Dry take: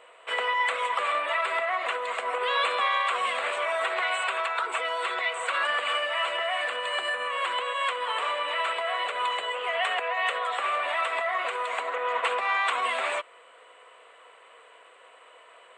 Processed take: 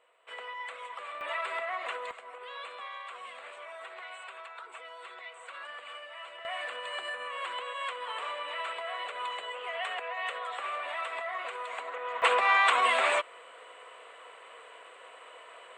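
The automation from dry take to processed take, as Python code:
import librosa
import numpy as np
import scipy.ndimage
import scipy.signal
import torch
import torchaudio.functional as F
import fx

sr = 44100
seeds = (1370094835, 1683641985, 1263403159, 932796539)

y = fx.gain(x, sr, db=fx.steps((0.0, -14.5), (1.21, -7.0), (2.11, -17.0), (6.45, -8.0), (12.22, 2.5)))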